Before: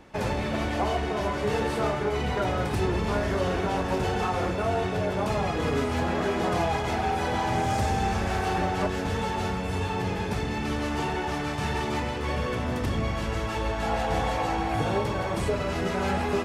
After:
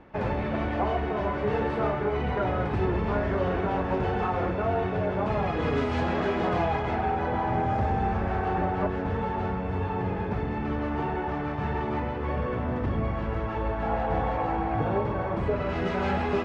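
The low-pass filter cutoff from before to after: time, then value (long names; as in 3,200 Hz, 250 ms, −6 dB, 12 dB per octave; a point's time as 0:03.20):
0:05.25 2,100 Hz
0:06.00 4,200 Hz
0:07.31 1,600 Hz
0:15.42 1,600 Hz
0:15.88 3,300 Hz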